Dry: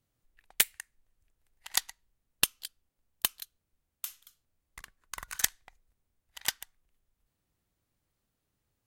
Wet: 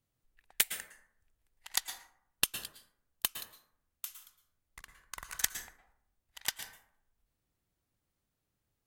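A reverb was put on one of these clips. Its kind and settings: plate-style reverb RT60 0.67 s, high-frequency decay 0.45×, pre-delay 0.1 s, DRR 7.5 dB; gain -3.5 dB

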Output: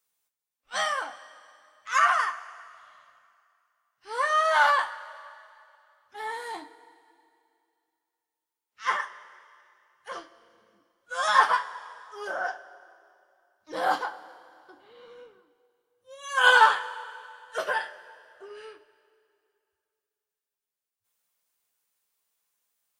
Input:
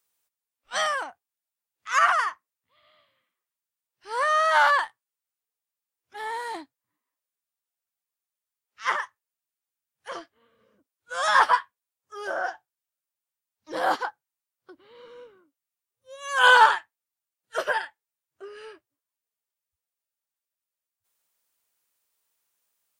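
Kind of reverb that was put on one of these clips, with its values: two-slope reverb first 0.21 s, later 2.5 s, from -21 dB, DRR 2.5 dB; gain -3.5 dB

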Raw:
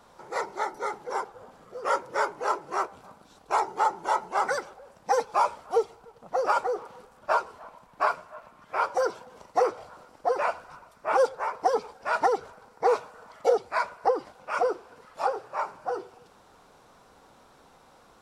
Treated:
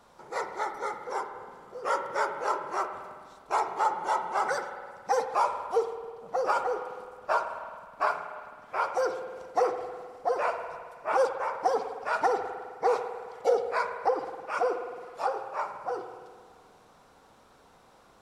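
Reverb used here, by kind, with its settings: spring tank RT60 1.8 s, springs 52 ms, chirp 60 ms, DRR 7 dB; gain -2.5 dB

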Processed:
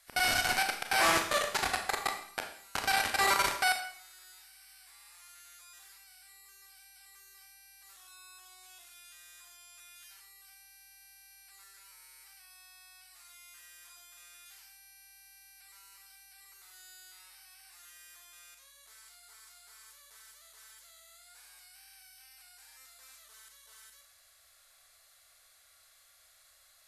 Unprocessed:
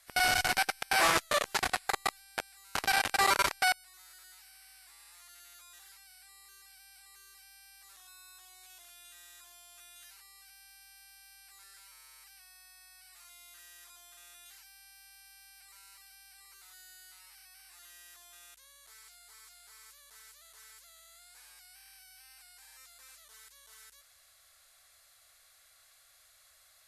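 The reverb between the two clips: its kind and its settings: Schroeder reverb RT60 0.58 s, combs from 27 ms, DRR 4 dB; gain -1.5 dB

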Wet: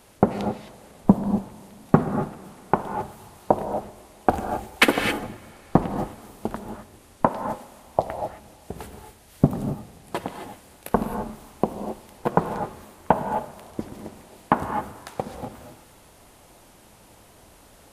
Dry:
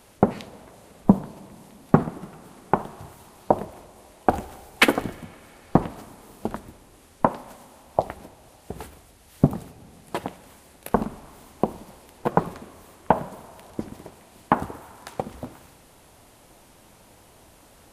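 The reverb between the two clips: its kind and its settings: non-linear reverb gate 0.29 s rising, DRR 6 dB

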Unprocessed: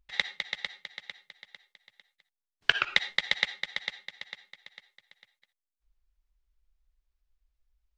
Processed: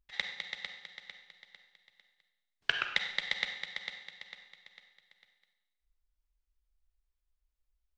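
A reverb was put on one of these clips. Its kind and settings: Schroeder reverb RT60 0.99 s, combs from 31 ms, DRR 6.5 dB; gain -6.5 dB

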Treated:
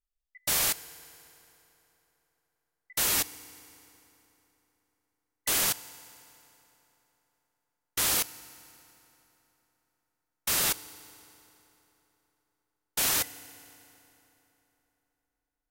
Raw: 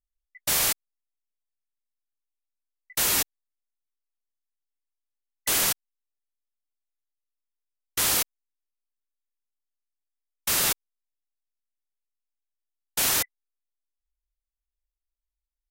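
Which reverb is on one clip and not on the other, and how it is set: FDN reverb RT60 3.5 s, high-frequency decay 0.75×, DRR 16 dB; gain -3 dB

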